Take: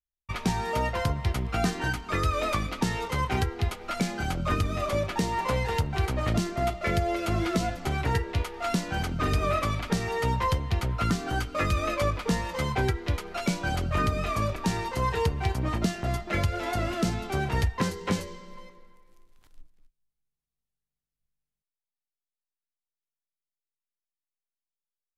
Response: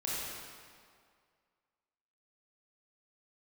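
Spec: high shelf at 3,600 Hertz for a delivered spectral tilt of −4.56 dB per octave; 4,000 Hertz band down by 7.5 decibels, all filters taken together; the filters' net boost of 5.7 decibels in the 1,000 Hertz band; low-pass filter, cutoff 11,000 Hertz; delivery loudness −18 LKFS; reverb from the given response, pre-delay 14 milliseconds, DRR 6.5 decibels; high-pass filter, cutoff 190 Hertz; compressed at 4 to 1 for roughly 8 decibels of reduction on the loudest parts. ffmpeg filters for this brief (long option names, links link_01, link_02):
-filter_complex "[0:a]highpass=190,lowpass=11000,equalizer=frequency=1000:width_type=o:gain=8,highshelf=frequency=3600:gain=-5.5,equalizer=frequency=4000:width_type=o:gain=-7,acompressor=threshold=-28dB:ratio=4,asplit=2[link_01][link_02];[1:a]atrim=start_sample=2205,adelay=14[link_03];[link_02][link_03]afir=irnorm=-1:irlink=0,volume=-11dB[link_04];[link_01][link_04]amix=inputs=2:normalize=0,volume=13dB"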